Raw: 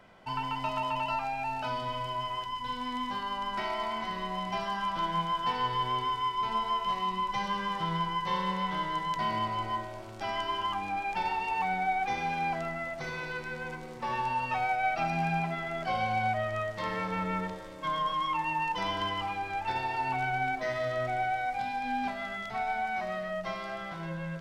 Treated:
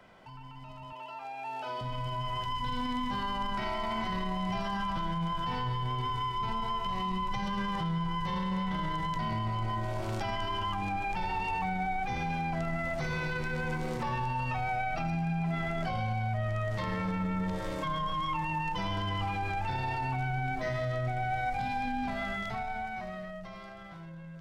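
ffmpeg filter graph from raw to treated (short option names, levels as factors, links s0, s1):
-filter_complex "[0:a]asettb=1/sr,asplit=3[s0][s1][s2];[s0]atrim=end=0.924[s3];[s1]atrim=start=0.92:end=1.81,asetpts=PTS-STARTPTS,afade=t=in:d=0.004:c=qsin,afade=t=out:st=0.886:d=0.004:c=qsin,highpass=f=130:w=0.5412,highpass=f=130:w=1.3066,lowshelf=f=270:t=q:w=3:g=-12,aeval=exprs='val(0)+0.00112*sin(2*PI*3300*n/s)':c=same[s4];[s2]atrim=start=1.806[s5];[s3][s4]acrossfade=d=0.004:c1=hsin:c2=qsin[s6];[s6][s5]acrossfade=d=0.004:c1=qsin:c2=hsin,acrossover=split=170[s7][s8];[s8]acompressor=threshold=0.00316:ratio=3[s9];[s7][s9]amix=inputs=2:normalize=0,alimiter=level_in=6.31:limit=0.0631:level=0:latency=1:release=14,volume=0.158,dynaudnorm=f=110:g=31:m=5.62"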